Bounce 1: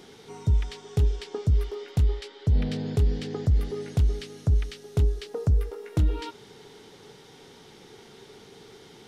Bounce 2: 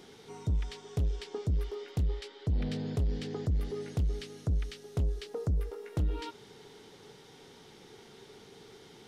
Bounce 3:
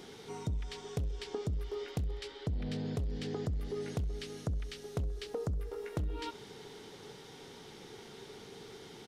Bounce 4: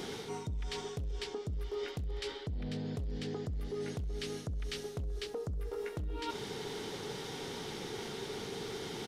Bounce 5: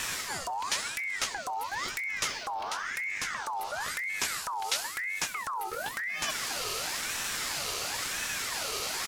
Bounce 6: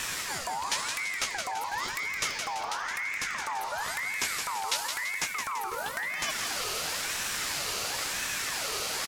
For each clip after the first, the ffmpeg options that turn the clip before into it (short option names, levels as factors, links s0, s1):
-af "asoftclip=type=tanh:threshold=0.1,volume=0.631"
-af "acompressor=threshold=0.0158:ratio=6,aecho=1:1:66|132|198|264|330:0.0841|0.0505|0.0303|0.0182|0.0109,volume=1.41"
-af "alimiter=level_in=1.88:limit=0.0631:level=0:latency=1:release=299,volume=0.531,areverse,acompressor=threshold=0.00501:ratio=6,areverse,volume=3.16"
-af "crystalizer=i=5:c=0,aeval=exprs='val(0)*sin(2*PI*1500*n/s+1500*0.45/0.97*sin(2*PI*0.97*n/s))':c=same,volume=1.78"
-filter_complex "[0:a]asplit=6[s0][s1][s2][s3][s4][s5];[s1]adelay=168,afreqshift=59,volume=0.501[s6];[s2]adelay=336,afreqshift=118,volume=0.221[s7];[s3]adelay=504,afreqshift=177,volume=0.0966[s8];[s4]adelay=672,afreqshift=236,volume=0.0427[s9];[s5]adelay=840,afreqshift=295,volume=0.0188[s10];[s0][s6][s7][s8][s9][s10]amix=inputs=6:normalize=0"